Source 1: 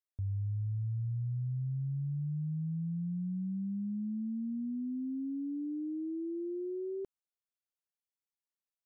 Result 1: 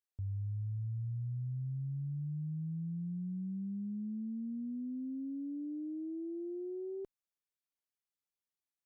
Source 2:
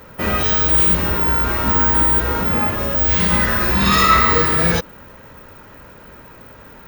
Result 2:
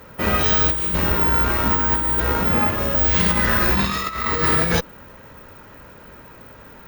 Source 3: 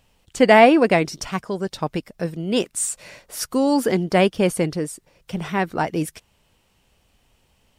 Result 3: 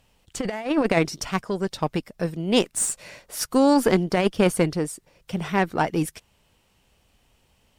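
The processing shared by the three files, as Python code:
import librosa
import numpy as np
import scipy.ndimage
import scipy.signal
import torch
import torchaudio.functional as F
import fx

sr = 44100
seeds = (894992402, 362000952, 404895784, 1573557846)

y = fx.cheby_harmonics(x, sr, harmonics=(7, 8), levels_db=(-27, -30), full_scale_db=-1.0)
y = fx.over_compress(y, sr, threshold_db=-18.0, ratio=-0.5)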